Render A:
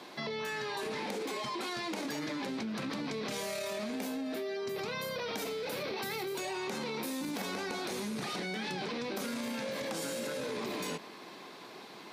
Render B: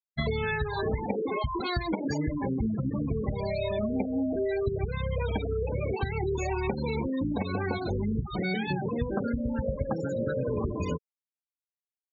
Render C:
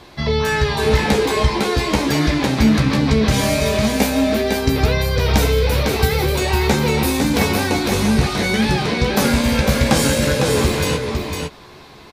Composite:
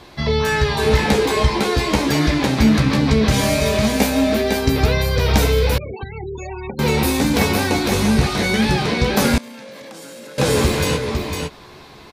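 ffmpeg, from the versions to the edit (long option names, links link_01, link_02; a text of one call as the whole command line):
ffmpeg -i take0.wav -i take1.wav -i take2.wav -filter_complex "[2:a]asplit=3[link_01][link_02][link_03];[link_01]atrim=end=5.782[link_04];[1:a]atrim=start=5.778:end=6.792[link_05];[link_02]atrim=start=6.788:end=9.382[link_06];[0:a]atrim=start=9.378:end=10.382[link_07];[link_03]atrim=start=10.378[link_08];[link_04][link_05]acrossfade=duration=0.004:curve1=hsin:curve2=hsin[link_09];[link_09][link_06]acrossfade=duration=0.004:curve1=hsin:curve2=hsin[link_10];[link_10][link_07]acrossfade=duration=0.004:curve1=hsin:curve2=hsin[link_11];[link_11][link_08]acrossfade=duration=0.004:curve1=hsin:curve2=hsin" out.wav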